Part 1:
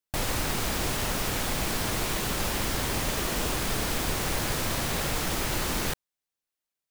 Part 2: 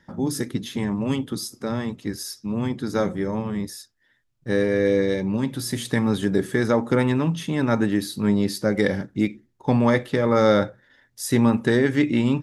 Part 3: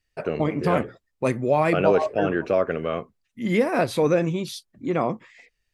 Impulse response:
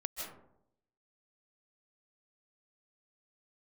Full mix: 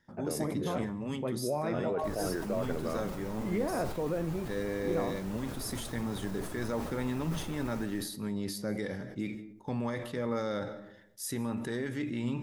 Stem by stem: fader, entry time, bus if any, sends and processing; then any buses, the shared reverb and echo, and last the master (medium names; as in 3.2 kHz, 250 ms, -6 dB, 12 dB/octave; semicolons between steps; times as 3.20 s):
-11.0 dB, 1.90 s, bus A, send -5.5 dB, reverb removal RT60 0.53 s
-8.5 dB, 0.00 s, no bus, send -16.5 dB, peak limiter -13 dBFS, peak gain reduction 7.5 dB; treble shelf 9.4 kHz +8.5 dB
-4.5 dB, 0.00 s, bus A, no send, none
bus A: 0.0 dB, low-pass 1.5 kHz 12 dB/octave; peak limiter -19.5 dBFS, peak gain reduction 9.5 dB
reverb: on, RT60 0.75 s, pre-delay 115 ms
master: flange 0.33 Hz, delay 7.9 ms, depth 6 ms, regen +84%; decay stretcher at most 60 dB/s